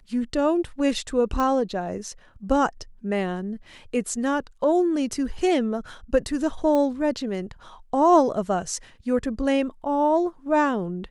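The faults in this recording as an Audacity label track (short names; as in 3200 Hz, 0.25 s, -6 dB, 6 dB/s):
1.400000	1.400000	pop -14 dBFS
6.750000	6.750000	pop -14 dBFS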